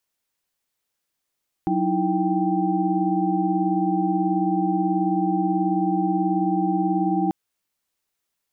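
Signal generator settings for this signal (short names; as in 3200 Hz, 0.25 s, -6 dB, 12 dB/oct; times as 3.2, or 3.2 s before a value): chord F#3/D#4/E4/G5 sine, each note -24.5 dBFS 5.64 s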